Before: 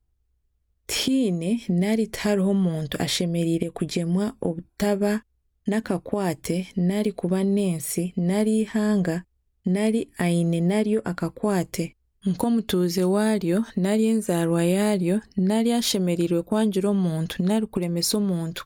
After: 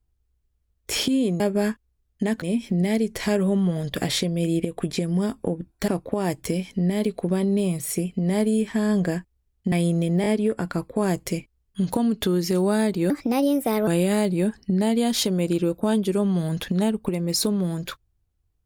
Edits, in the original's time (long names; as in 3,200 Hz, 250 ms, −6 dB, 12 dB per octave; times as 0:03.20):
0:04.86–0:05.88: move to 0:01.40
0:09.72–0:10.23: remove
0:10.73: stutter 0.02 s, 3 plays
0:13.57–0:14.56: play speed 128%